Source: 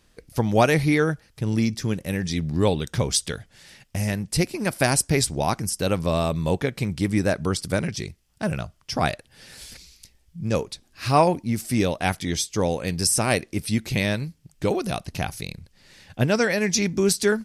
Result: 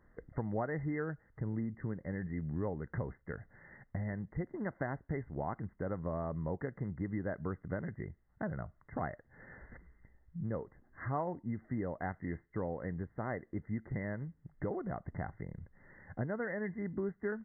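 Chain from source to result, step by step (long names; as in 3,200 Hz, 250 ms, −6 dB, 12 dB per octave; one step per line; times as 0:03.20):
downward compressor 3 to 1, threshold −34 dBFS, peak gain reduction 16.5 dB
linear-phase brick-wall low-pass 2,100 Hz
level −3.5 dB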